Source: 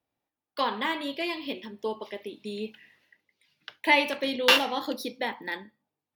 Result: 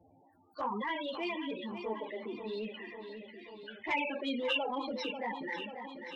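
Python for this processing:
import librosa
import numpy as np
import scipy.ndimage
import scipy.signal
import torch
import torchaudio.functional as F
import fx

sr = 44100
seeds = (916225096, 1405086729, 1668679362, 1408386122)

y = fx.transient(x, sr, attack_db=-7, sustain_db=1)
y = fx.spec_topn(y, sr, count=16)
y = fx.env_flanger(y, sr, rest_ms=11.3, full_db=-16.0)
y = fx.echo_feedback(y, sr, ms=540, feedback_pct=46, wet_db=-16.0)
y = fx.env_flatten(y, sr, amount_pct=50)
y = F.gain(torch.from_numpy(y), -6.0).numpy()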